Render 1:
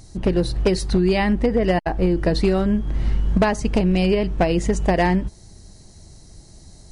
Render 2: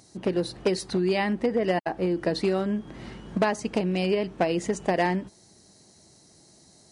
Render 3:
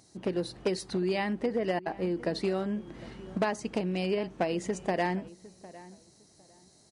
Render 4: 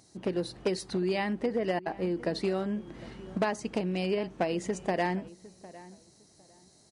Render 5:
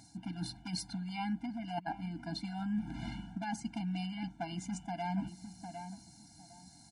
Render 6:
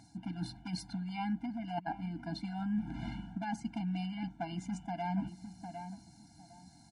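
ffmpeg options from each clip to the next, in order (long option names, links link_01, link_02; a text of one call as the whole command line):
ffmpeg -i in.wav -af "highpass=210,volume=-4.5dB" out.wav
ffmpeg -i in.wav -filter_complex "[0:a]asplit=2[link_01][link_02];[link_02]adelay=755,lowpass=frequency=1700:poles=1,volume=-18.5dB,asplit=2[link_03][link_04];[link_04]adelay=755,lowpass=frequency=1700:poles=1,volume=0.22[link_05];[link_01][link_03][link_05]amix=inputs=3:normalize=0,volume=-5dB" out.wav
ffmpeg -i in.wav -af anull out.wav
ffmpeg -i in.wav -af "areverse,acompressor=threshold=-36dB:ratio=16,areverse,afftfilt=real='re*eq(mod(floor(b*sr/1024/340),2),0)':imag='im*eq(mod(floor(b*sr/1024/340),2),0)':win_size=1024:overlap=0.75,volume=5.5dB" out.wav
ffmpeg -i in.wav -af "highshelf=frequency=3700:gain=-9,volume=1dB" out.wav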